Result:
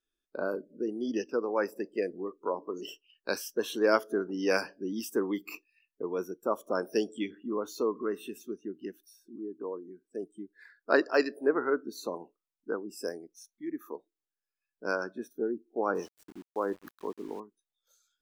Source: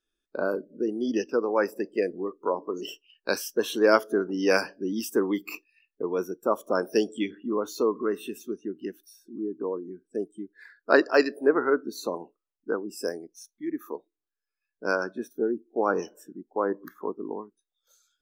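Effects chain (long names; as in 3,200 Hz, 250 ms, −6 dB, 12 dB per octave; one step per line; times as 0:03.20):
0:09.36–0:10.23: low-shelf EQ 230 Hz −7.5 dB
0:15.95–0:17.40: centre clipping without the shift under −45.5 dBFS
level −5 dB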